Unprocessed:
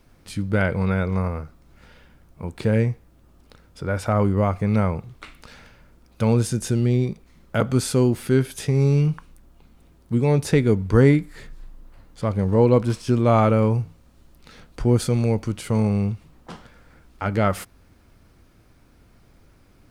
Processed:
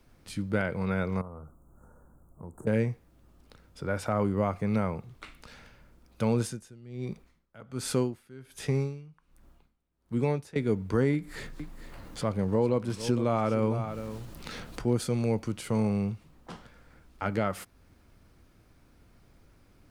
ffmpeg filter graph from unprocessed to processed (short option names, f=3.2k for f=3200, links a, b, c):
-filter_complex "[0:a]asettb=1/sr,asplit=3[a][b][c];[a]atrim=end=1.214[d];[b]atrim=start=1.21:end=2.67,asetpts=PTS-STARTPTS,afade=t=in:d=0.004:c=qsin,afade=t=out:st=1.456:d=0.004:c=qsin,asuperstop=centerf=3200:order=12:qfactor=0.56,acompressor=threshold=-35dB:ratio=3:attack=3.2:release=140:knee=1:detection=peak[e];[c]atrim=start=2.666[f];[d][e]acrossfade=d=0.004:c1=hsin:c2=qsin[g];[g][f]acrossfade=d=0.004:c1=qsin:c2=hsin,asettb=1/sr,asplit=3[h][i][j];[h]atrim=end=6.404[k];[i]atrim=start=6.4:end=10.56,asetpts=PTS-STARTPTS,afade=t=in:d=0.004:c=qsin,afade=t=out:st=4.156:d=0.004:c=qsin,equalizer=f=1.4k:w=0.66:g=3.5,aeval=exprs='val(0)*pow(10,-25*(0.5-0.5*cos(2*PI*1.3*n/s))/20)':c=same[l];[j]atrim=start=10.556[m];[k][l]acrossfade=d=0.004:c1=hsin:c2=qsin[n];[n][m]acrossfade=d=0.004:c1=qsin:c2=hsin,asettb=1/sr,asplit=3[o][p][q];[o]atrim=end=11.144[r];[p]atrim=start=11.14:end=14.93,asetpts=PTS-STARTPTS,afade=t=in:d=0.004:c=qsin,afade=t=out:st=3.786:d=0.004:c=qsin,acompressor=mode=upward:threshold=-21dB:ratio=2.5:attack=3.2:release=140:knee=2.83:detection=peak,aecho=1:1:455:0.2,atrim=end_sample=167139[s];[q]atrim=start=14.926[t];[r][s]acrossfade=d=0.004:c1=hsin:c2=qsin[u];[u][t]acrossfade=d=0.004:c1=qsin:c2=hsin,acrossover=split=120[v][w];[v]acompressor=threshold=-43dB:ratio=2[x];[x][w]amix=inputs=2:normalize=0,alimiter=limit=-10.5dB:level=0:latency=1:release=396,volume=-5dB"